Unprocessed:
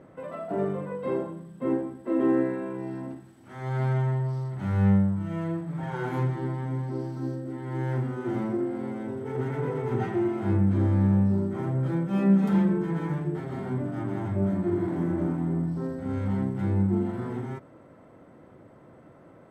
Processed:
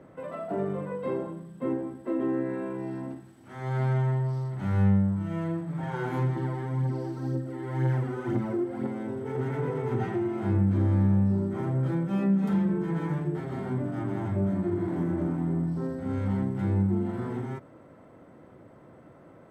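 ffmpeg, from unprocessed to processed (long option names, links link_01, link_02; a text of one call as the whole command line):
ffmpeg -i in.wav -filter_complex "[0:a]asettb=1/sr,asplit=3[link_01][link_02][link_03];[link_01]atrim=end=6.364[link_04];[link_02]atrim=start=6.36:end=8.87,asetpts=PTS-STARTPTS,afade=type=in:duration=0.004:curve=qsin,afade=type=out:start_time=2.506:duration=0.004:curve=qsin,aphaser=in_gain=1:out_gain=1:delay=3:decay=0.5:speed=2:type=triangular[link_05];[link_03]atrim=start=8.866[link_06];[link_04][link_05]acrossfade=duration=0.004:curve1=hsin:curve2=qsin[link_07];[link_07][link_06]acrossfade=duration=0.004:curve1=qsin:curve2=hsin,acrossover=split=160[link_08][link_09];[link_09]acompressor=threshold=-26dB:ratio=6[link_10];[link_08][link_10]amix=inputs=2:normalize=0" out.wav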